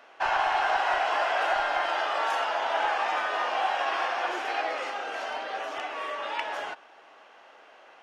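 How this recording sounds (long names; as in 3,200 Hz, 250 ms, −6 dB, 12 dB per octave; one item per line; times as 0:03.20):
background noise floor −54 dBFS
spectral slope +3.0 dB per octave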